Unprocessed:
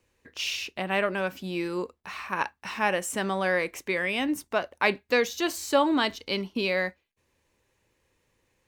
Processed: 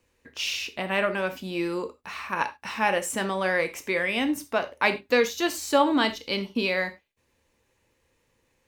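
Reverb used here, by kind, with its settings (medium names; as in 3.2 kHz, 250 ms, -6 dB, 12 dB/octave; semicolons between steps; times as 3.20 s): gated-style reverb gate 120 ms falling, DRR 8 dB; trim +1 dB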